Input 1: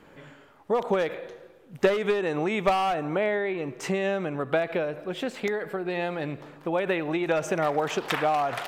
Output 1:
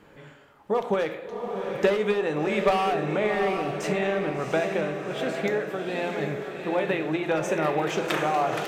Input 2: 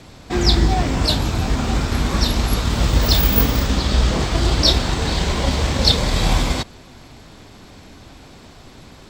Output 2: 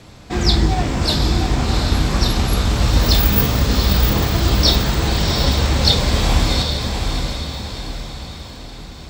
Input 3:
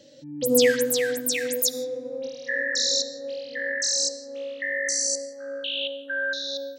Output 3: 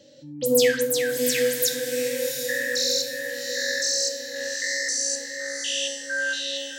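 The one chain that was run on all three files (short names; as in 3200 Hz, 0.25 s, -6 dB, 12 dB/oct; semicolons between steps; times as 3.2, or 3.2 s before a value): diffused feedback echo 0.735 s, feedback 48%, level -5 dB; non-linear reverb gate 0.13 s falling, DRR 7.5 dB; gain -1 dB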